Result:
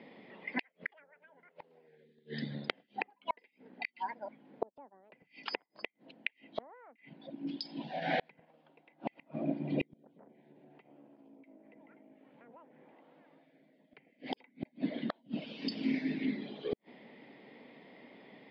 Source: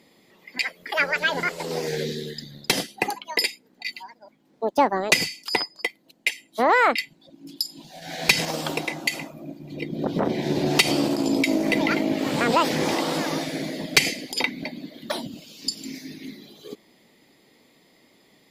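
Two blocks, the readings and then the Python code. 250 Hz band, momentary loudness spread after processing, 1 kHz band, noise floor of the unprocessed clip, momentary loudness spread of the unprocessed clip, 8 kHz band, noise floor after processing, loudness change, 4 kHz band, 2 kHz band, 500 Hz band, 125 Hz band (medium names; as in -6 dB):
-12.5 dB, 23 LU, -17.5 dB, -60 dBFS, 17 LU, under -40 dB, -75 dBFS, -15.5 dB, -21.0 dB, -19.0 dB, -16.5 dB, -13.5 dB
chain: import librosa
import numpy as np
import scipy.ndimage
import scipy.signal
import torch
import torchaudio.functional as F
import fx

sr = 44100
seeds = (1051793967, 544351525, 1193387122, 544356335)

y = fx.cabinet(x, sr, low_hz=150.0, low_slope=24, high_hz=4300.0, hz=(170.0, 340.0, 1200.0, 4000.0), db=(-5, -6, -6, -5))
y = fx.env_lowpass_down(y, sr, base_hz=1300.0, full_db=-19.0)
y = fx.air_absorb(y, sr, metres=330.0)
y = fx.gate_flip(y, sr, shuts_db=-27.0, range_db=-40)
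y = y * librosa.db_to_amplitude(7.0)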